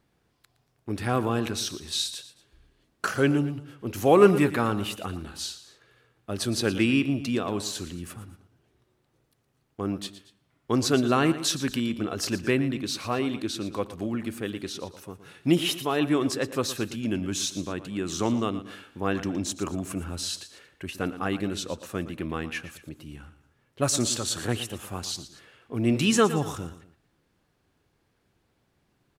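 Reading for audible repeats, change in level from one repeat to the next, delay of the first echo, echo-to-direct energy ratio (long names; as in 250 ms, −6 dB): 2, −7.0 dB, 116 ms, −13.0 dB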